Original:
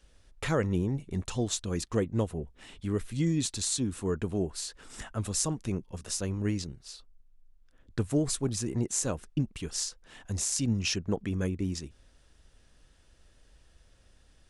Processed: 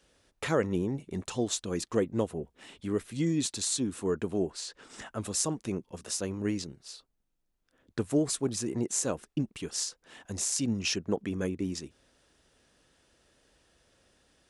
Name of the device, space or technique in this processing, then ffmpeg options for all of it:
filter by subtraction: -filter_complex "[0:a]asettb=1/sr,asplit=3[link_01][link_02][link_03];[link_01]atrim=end=4.524[link_04];[link_02]atrim=start=4.52:end=5.06,asetpts=PTS-STARTPTS,afade=type=in:duration=0.004:curve=qsin,afade=type=out:start_time=0.536:duration=0.004:curve=qsin,lowpass=7200[link_05];[link_03]atrim=start=5.056[link_06];[link_04][link_05]acrossfade=duration=0.004:curve1=hsin:curve2=qsin[link_07];[link_07][link_06]acrossfade=duration=0.004:curve1=qsin:curve2=hsin,asplit=2[link_08][link_09];[link_09]lowpass=340,volume=-1[link_10];[link_08][link_10]amix=inputs=2:normalize=0"

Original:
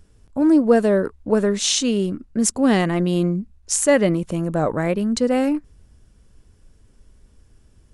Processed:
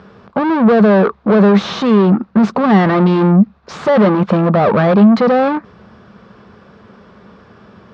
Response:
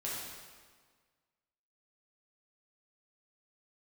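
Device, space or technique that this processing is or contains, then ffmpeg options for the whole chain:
overdrive pedal into a guitar cabinet: -filter_complex "[0:a]asplit=2[link_01][link_02];[link_02]highpass=frequency=720:poles=1,volume=36dB,asoftclip=type=tanh:threshold=-2.5dB[link_03];[link_01][link_03]amix=inputs=2:normalize=0,lowpass=frequency=1100:poles=1,volume=-6dB,highpass=110,equalizer=frequency=200:width_type=q:width=4:gain=9,equalizer=frequency=290:width_type=q:width=4:gain=-9,equalizer=frequency=1200:width_type=q:width=4:gain=6,equalizer=frequency=2000:width_type=q:width=4:gain=-3,equalizer=frequency=2900:width_type=q:width=4:gain=-5,lowpass=frequency=4300:width=0.5412,lowpass=frequency=4300:width=1.3066,volume=-1dB"

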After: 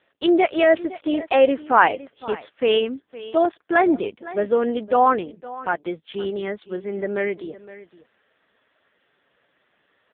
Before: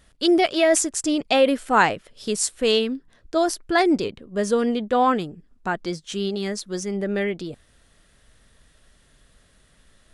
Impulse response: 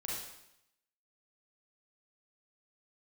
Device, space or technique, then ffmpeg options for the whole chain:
satellite phone: -af "highpass=330,lowpass=3100,aecho=1:1:513:0.133,volume=3.5dB" -ar 8000 -c:a libopencore_amrnb -b:a 5150

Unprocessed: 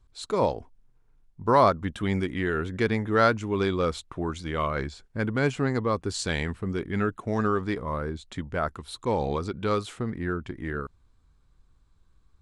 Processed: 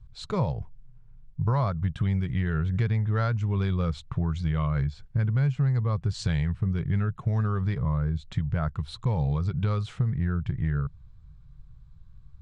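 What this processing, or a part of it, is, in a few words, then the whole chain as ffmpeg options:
jukebox: -af "lowpass=5400,lowshelf=frequency=200:width_type=q:width=3:gain=11.5,acompressor=threshold=-23dB:ratio=5"

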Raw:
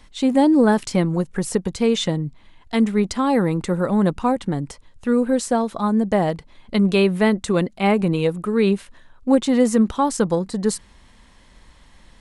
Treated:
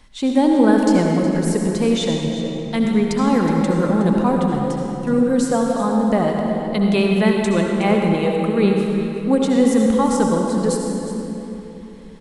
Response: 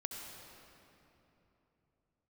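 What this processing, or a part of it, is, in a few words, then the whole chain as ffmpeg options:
cave: -filter_complex "[0:a]aecho=1:1:367:0.224[link_01];[1:a]atrim=start_sample=2205[link_02];[link_01][link_02]afir=irnorm=-1:irlink=0,volume=2dB"

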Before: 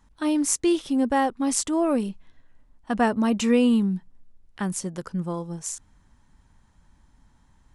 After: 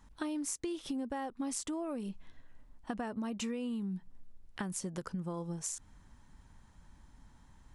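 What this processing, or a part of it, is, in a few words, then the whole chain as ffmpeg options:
serial compression, peaks first: -af "acompressor=threshold=-29dB:ratio=6,acompressor=threshold=-37dB:ratio=2.5"

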